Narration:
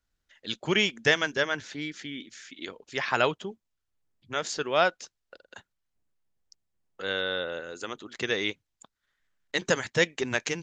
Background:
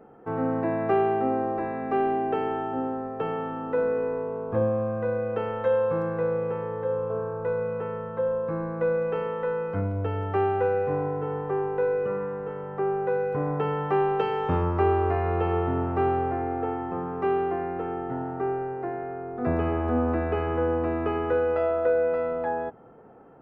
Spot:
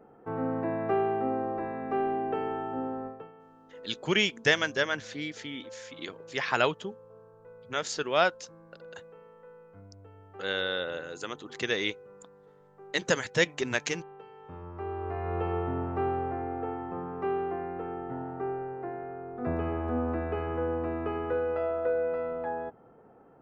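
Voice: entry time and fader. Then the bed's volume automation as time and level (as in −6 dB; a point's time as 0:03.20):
3.40 s, −1.0 dB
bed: 0:03.07 −4.5 dB
0:03.32 −23.5 dB
0:14.35 −23.5 dB
0:15.36 −5.5 dB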